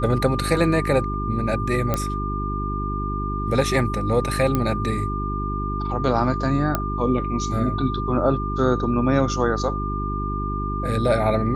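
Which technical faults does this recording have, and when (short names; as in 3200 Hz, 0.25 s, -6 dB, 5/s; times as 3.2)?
hum 50 Hz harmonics 8 -27 dBFS
tone 1200 Hz -28 dBFS
1.94 pop -8 dBFS
4.55 pop -9 dBFS
6.75 pop -7 dBFS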